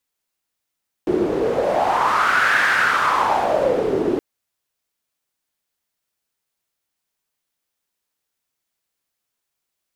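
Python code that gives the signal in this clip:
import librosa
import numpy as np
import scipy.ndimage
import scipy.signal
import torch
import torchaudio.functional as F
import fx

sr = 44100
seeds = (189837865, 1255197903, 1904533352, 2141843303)

y = fx.wind(sr, seeds[0], length_s=3.12, low_hz=360.0, high_hz=1600.0, q=5.0, gusts=1, swing_db=3)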